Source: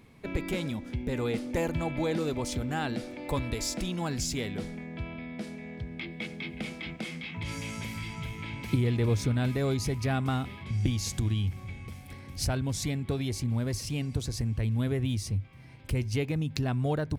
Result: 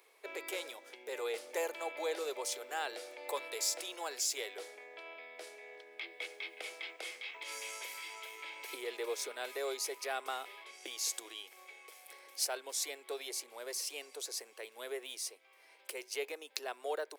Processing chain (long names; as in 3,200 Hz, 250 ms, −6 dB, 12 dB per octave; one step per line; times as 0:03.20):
Butterworth high-pass 400 Hz 48 dB per octave
high-shelf EQ 7,000 Hz +10 dB
level −4.5 dB